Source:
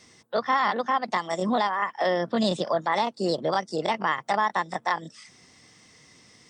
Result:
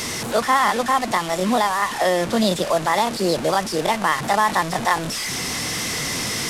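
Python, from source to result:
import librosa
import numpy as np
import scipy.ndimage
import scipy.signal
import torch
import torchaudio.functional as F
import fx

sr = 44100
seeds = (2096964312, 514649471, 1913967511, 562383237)

p1 = fx.delta_mod(x, sr, bps=64000, step_db=-27.0)
p2 = fx.rider(p1, sr, range_db=10, speed_s=2.0)
y = p1 + F.gain(torch.from_numpy(p2), -1.0).numpy()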